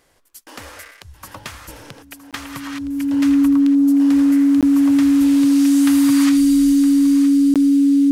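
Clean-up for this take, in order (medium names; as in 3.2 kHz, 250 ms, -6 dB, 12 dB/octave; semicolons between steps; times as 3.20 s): band-stop 280 Hz, Q 30; interpolate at 2.31/4.61/7.54 s, 17 ms; inverse comb 965 ms -13.5 dB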